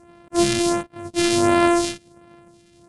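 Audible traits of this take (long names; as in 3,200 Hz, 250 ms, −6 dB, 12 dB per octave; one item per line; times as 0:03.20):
a buzz of ramps at a fixed pitch in blocks of 128 samples
phaser sweep stages 2, 1.4 Hz, lowest notch 730–4,700 Hz
IMA ADPCM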